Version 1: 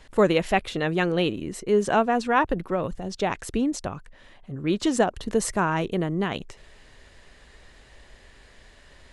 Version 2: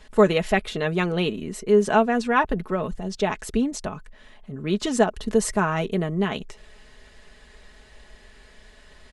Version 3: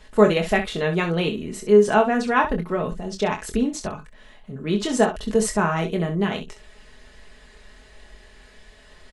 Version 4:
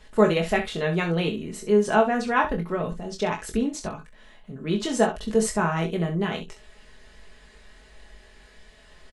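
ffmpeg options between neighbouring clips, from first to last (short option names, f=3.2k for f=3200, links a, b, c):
-af "aecho=1:1:4.7:0.53"
-af "aecho=1:1:24|65:0.501|0.299"
-filter_complex "[0:a]asplit=2[a][b];[b]adelay=18,volume=-9dB[c];[a][c]amix=inputs=2:normalize=0,volume=-3dB"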